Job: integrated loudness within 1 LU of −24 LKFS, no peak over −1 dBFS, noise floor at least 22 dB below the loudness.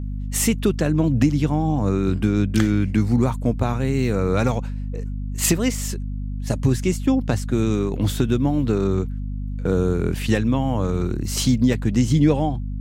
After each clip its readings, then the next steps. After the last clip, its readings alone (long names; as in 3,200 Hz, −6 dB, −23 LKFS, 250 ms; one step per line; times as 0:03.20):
mains hum 50 Hz; hum harmonics up to 250 Hz; level of the hum −25 dBFS; integrated loudness −21.5 LKFS; sample peak −5.0 dBFS; target loudness −24.0 LKFS
→ mains-hum notches 50/100/150/200/250 Hz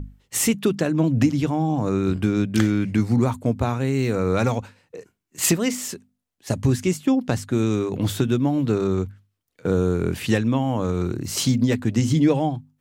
mains hum none found; integrated loudness −22.0 LKFS; sample peak −6.5 dBFS; target loudness −24.0 LKFS
→ level −2 dB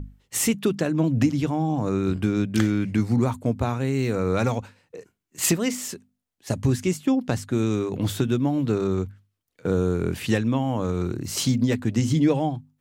integrated loudness −24.0 LKFS; sample peak −8.5 dBFS; background noise floor −78 dBFS